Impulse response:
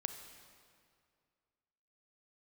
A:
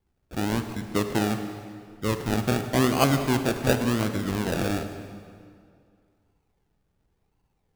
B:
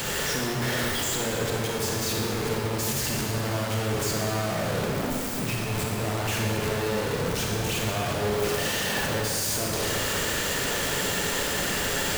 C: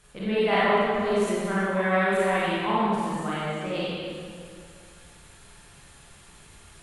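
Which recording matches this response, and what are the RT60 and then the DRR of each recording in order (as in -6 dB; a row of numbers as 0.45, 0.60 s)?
A; 2.2, 2.2, 2.2 s; 7.0, -2.0, -10.0 dB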